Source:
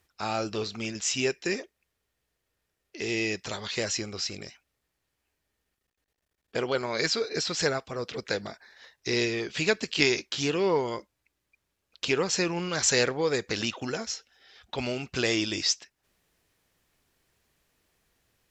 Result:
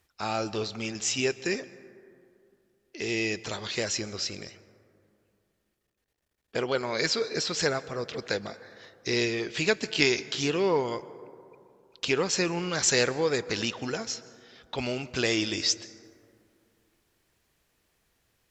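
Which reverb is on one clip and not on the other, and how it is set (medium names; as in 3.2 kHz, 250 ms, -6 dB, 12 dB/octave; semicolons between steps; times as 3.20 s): plate-style reverb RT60 2.6 s, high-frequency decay 0.3×, pre-delay 115 ms, DRR 17 dB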